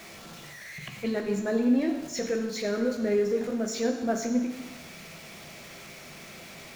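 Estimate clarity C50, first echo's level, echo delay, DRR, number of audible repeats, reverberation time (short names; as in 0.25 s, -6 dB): 6.5 dB, none, none, 3.5 dB, none, 1.1 s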